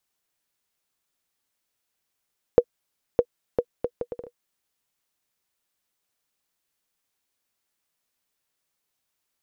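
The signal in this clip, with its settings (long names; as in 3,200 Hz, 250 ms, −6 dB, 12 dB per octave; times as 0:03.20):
bouncing ball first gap 0.61 s, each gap 0.65, 483 Hz, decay 61 ms −3 dBFS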